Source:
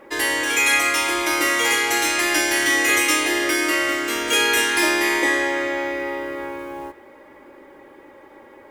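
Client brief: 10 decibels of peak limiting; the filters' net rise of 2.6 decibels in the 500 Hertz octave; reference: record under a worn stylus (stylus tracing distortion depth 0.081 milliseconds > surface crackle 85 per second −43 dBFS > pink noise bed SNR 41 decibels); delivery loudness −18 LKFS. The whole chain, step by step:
parametric band 500 Hz +3.5 dB
brickwall limiter −15 dBFS
stylus tracing distortion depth 0.081 ms
surface crackle 85 per second −43 dBFS
pink noise bed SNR 41 dB
level +5 dB

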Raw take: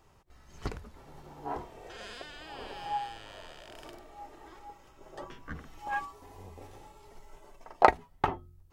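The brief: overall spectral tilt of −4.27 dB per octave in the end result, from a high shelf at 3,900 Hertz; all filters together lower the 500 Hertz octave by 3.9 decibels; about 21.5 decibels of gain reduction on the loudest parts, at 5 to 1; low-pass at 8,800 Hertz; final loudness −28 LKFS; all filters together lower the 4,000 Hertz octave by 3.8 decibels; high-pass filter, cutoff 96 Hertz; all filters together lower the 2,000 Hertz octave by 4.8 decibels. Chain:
high-pass filter 96 Hz
low-pass filter 8,800 Hz
parametric band 500 Hz −5 dB
parametric band 2,000 Hz −5.5 dB
high-shelf EQ 3,900 Hz +3 dB
parametric band 4,000 Hz −4.5 dB
downward compressor 5 to 1, threshold −41 dBFS
level +21.5 dB

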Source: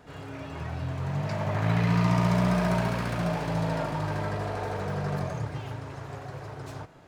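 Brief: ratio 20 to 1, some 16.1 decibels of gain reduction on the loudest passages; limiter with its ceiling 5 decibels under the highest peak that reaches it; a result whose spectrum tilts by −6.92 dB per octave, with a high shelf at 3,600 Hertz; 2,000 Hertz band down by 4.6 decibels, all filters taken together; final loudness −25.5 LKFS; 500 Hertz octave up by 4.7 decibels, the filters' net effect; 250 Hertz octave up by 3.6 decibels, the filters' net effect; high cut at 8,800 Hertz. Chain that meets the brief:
low-pass filter 8,800 Hz
parametric band 250 Hz +5.5 dB
parametric band 500 Hz +5.5 dB
parametric band 2,000 Hz −4.5 dB
high-shelf EQ 3,600 Hz −7.5 dB
downward compressor 20 to 1, threshold −33 dBFS
level +13.5 dB
brickwall limiter −16.5 dBFS

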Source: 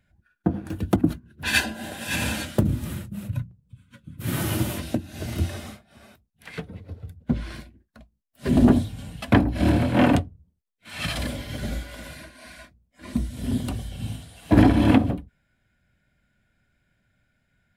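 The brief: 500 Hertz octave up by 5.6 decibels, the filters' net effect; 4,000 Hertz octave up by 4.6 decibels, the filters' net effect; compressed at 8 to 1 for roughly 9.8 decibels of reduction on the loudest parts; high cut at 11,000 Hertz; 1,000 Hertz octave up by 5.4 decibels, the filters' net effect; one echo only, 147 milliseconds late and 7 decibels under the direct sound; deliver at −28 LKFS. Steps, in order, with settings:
low-pass filter 11,000 Hz
parametric band 500 Hz +6 dB
parametric band 1,000 Hz +4.5 dB
parametric band 4,000 Hz +5.5 dB
downward compressor 8 to 1, threshold −19 dBFS
single-tap delay 147 ms −7 dB
level −1 dB

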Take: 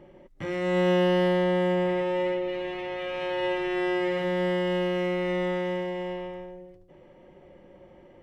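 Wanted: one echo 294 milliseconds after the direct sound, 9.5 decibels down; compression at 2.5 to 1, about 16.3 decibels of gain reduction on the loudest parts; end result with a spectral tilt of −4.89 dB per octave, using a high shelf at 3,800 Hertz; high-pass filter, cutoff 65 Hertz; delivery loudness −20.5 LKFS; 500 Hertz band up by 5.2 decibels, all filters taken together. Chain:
high-pass filter 65 Hz
parametric band 500 Hz +6 dB
high-shelf EQ 3,800 Hz +7 dB
downward compressor 2.5 to 1, threshold −42 dBFS
single-tap delay 294 ms −9.5 dB
level +15.5 dB

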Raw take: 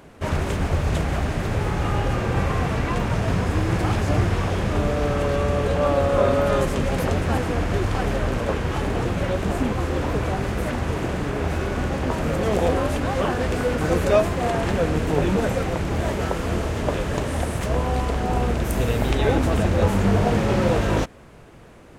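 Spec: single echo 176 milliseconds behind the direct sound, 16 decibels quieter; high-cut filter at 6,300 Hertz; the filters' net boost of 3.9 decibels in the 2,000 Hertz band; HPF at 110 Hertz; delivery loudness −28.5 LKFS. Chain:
high-pass filter 110 Hz
low-pass filter 6,300 Hz
parametric band 2,000 Hz +5 dB
single-tap delay 176 ms −16 dB
level −5 dB

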